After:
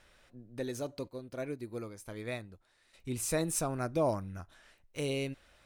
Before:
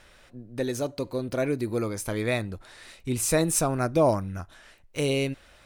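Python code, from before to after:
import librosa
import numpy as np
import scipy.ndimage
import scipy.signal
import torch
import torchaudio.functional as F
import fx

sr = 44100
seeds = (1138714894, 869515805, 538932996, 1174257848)

y = fx.upward_expand(x, sr, threshold_db=-44.0, expansion=1.5, at=(1.07, 2.93), fade=0.02)
y = F.gain(torch.from_numpy(y), -8.5).numpy()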